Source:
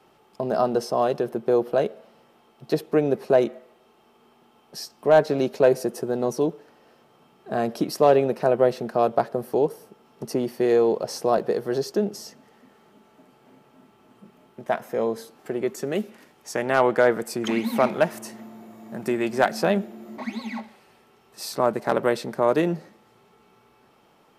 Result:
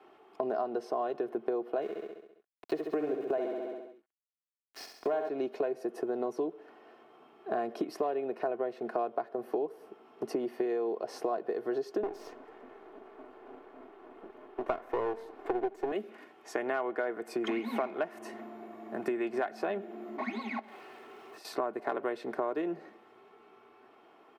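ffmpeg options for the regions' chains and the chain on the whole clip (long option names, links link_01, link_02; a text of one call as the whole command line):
ffmpeg -i in.wav -filter_complex "[0:a]asettb=1/sr,asplit=3[link_01][link_02][link_03];[link_01]atrim=end=1.824[link_04];[link_02]atrim=start=1.82:end=5.29,asetpts=PTS-STARTPTS,afade=type=in:duration=0.004:curve=qsin,afade=type=out:start_time=3.466:duration=0.004:curve=qsin,aeval=exprs='val(0)*gte(abs(val(0)),0.0188)':channel_layout=same,aecho=1:1:67|134|201|268|335|402|469|536:0.501|0.291|0.169|0.0978|0.0567|0.0329|0.0191|0.0111,atrim=end_sample=153027[link_05];[link_03]atrim=start=5.286[link_06];[link_04][link_05]acrossfade=duration=0.004:curve1=hsin:curve2=qsin[link_07];[link_07][link_06]acrossfade=duration=0.004:curve1=qsin:curve2=hsin,asettb=1/sr,asplit=3[link_08][link_09][link_10];[link_08]atrim=end=12.034[link_11];[link_09]atrim=start=12.03:end=15.92,asetpts=PTS-STARTPTS,afade=type=in:duration=0.004:curve=qsin,afade=type=out:start_time=3.886:duration=0.004:curve=qsin,highpass=frequency=240:width=0.5412,highpass=frequency=240:width=1.3066,equalizer=frequency=410:width_type=o:width=2.7:gain=12,aeval=exprs='max(val(0),0)':channel_layout=same[link_12];[link_10]atrim=start=15.916[link_13];[link_11][link_12]acrossfade=duration=0.004:curve1=hsin:curve2=qsin[link_14];[link_14][link_13]acrossfade=duration=0.004:curve1=qsin:curve2=hsin,asettb=1/sr,asplit=3[link_15][link_16][link_17];[link_15]atrim=end=20.594[link_18];[link_16]atrim=start=20.59:end=21.45,asetpts=PTS-STARTPTS,afade=type=in:duration=0.004:curve=qsin,afade=type=out:start_time=0.856:duration=0.004:curve=qsin,aeval=exprs='val(0)+0.5*0.00398*sgn(val(0))':channel_layout=same,highpass=93,acompressor=threshold=-44dB:ratio=4:attack=3.2:release=140:knee=1:detection=peak[link_19];[link_17]atrim=start=21.446[link_20];[link_18][link_19]acrossfade=duration=0.004:curve1=hsin:curve2=qsin[link_21];[link_21][link_20]acrossfade=duration=0.004:curve1=qsin:curve2=hsin,acrossover=split=220 3000:gain=0.126 1 0.158[link_22][link_23][link_24];[link_22][link_23][link_24]amix=inputs=3:normalize=0,aecho=1:1:2.8:0.45,acompressor=threshold=-29dB:ratio=10" out.wav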